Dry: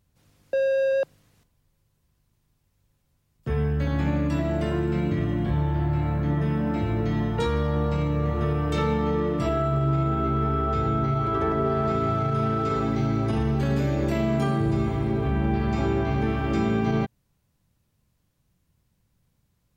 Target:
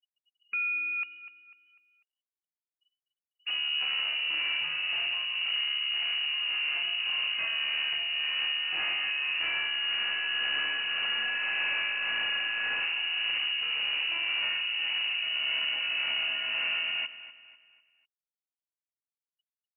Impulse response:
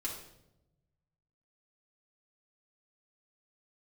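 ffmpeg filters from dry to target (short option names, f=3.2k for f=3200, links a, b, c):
-filter_complex "[0:a]tremolo=f=1.8:d=0.44,afftfilt=real='re*gte(hypot(re,im),0.00562)':imag='im*gte(hypot(re,im),0.00562)':win_size=1024:overlap=0.75,asoftclip=type=tanh:threshold=-29.5dB,asplit=2[a][b];[b]aecho=0:1:248|496|744|992:0.2|0.0778|0.0303|0.0118[c];[a][c]amix=inputs=2:normalize=0,lowpass=f=2.6k:t=q:w=0.5098,lowpass=f=2.6k:t=q:w=0.6013,lowpass=f=2.6k:t=q:w=0.9,lowpass=f=2.6k:t=q:w=2.563,afreqshift=-3000,volume=1.5dB" -ar 48000 -c:a libopus -b:a 64k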